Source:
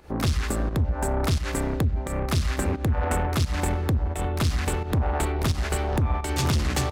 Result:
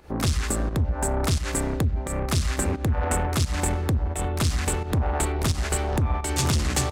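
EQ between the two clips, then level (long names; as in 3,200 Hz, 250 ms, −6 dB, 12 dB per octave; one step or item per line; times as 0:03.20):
dynamic equaliser 8,100 Hz, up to +7 dB, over −49 dBFS, Q 1.1
0.0 dB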